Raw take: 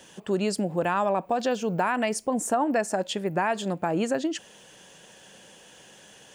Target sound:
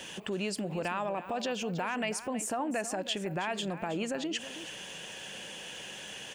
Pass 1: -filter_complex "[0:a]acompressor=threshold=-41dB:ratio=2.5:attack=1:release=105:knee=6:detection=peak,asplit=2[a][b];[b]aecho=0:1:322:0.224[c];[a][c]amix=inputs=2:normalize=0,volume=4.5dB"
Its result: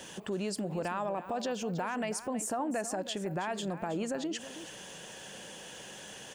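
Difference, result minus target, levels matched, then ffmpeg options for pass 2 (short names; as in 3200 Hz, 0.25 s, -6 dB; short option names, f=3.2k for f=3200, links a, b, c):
2000 Hz band -3.0 dB
-filter_complex "[0:a]acompressor=threshold=-41dB:ratio=2.5:attack=1:release=105:knee=6:detection=peak,equalizer=f=2.6k:w=1.5:g=8,asplit=2[a][b];[b]aecho=0:1:322:0.224[c];[a][c]amix=inputs=2:normalize=0,volume=4.5dB"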